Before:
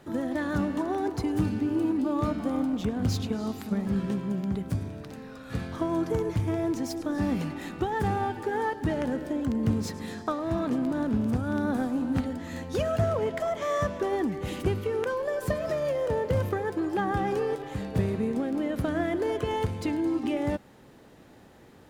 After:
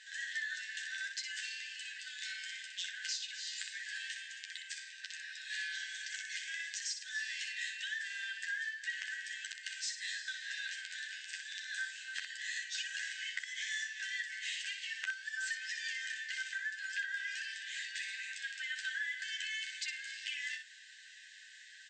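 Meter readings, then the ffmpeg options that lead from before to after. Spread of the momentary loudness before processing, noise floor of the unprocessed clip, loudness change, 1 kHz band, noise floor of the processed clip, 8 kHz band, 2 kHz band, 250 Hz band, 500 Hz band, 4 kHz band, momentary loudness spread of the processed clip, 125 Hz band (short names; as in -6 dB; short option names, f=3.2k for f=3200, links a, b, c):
5 LU, -53 dBFS, -10.5 dB, under -40 dB, -55 dBFS, +4.5 dB, +3.5 dB, under -40 dB, under -40 dB, +5.5 dB, 6 LU, under -40 dB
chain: -filter_complex "[0:a]bandreject=f=2.3k:w=8.6,afftfilt=real='re*between(b*sr/4096,1500,8500)':imag='im*between(b*sr/4096,1500,8500)':win_size=4096:overlap=0.75,acompressor=threshold=-46dB:ratio=6,asplit=2[a][b];[b]aecho=0:1:11|62:0.596|0.501[c];[a][c]amix=inputs=2:normalize=0,volume=7.5dB"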